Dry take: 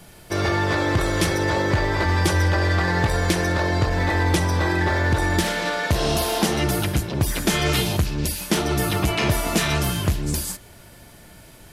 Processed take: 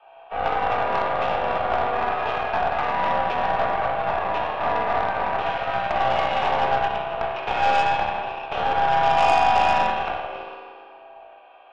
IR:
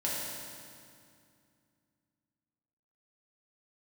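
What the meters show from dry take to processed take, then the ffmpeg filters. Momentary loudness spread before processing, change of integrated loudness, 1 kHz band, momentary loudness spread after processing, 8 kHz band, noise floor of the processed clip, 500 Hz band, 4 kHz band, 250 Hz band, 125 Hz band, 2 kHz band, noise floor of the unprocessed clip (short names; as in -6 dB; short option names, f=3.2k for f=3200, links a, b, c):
4 LU, -1.0 dB, +8.0 dB, 9 LU, under -20 dB, -47 dBFS, 0.0 dB, -6.5 dB, -14.0 dB, -18.0 dB, -3.0 dB, -46 dBFS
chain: -filter_complex "[0:a]asplit=3[a][b][c];[a]bandpass=f=730:t=q:w=8,volume=0dB[d];[b]bandpass=f=1.09k:t=q:w=8,volume=-6dB[e];[c]bandpass=f=2.44k:t=q:w=8,volume=-9dB[f];[d][e][f]amix=inputs=3:normalize=0,asplit=2[g][h];[h]acrusher=bits=3:mix=0:aa=0.5,volume=-5dB[i];[g][i]amix=inputs=2:normalize=0,highpass=f=320:t=q:w=0.5412,highpass=f=320:t=q:w=1.307,lowpass=f=3.1k:t=q:w=0.5176,lowpass=f=3.1k:t=q:w=0.7071,lowpass=f=3.1k:t=q:w=1.932,afreqshift=93[j];[1:a]atrim=start_sample=2205,asetrate=48510,aresample=44100[k];[j][k]afir=irnorm=-1:irlink=0,aeval=exprs='0.188*(cos(1*acos(clip(val(0)/0.188,-1,1)))-cos(1*PI/2))+0.015*(cos(8*acos(clip(val(0)/0.188,-1,1)))-cos(8*PI/2))':c=same,volume=8dB"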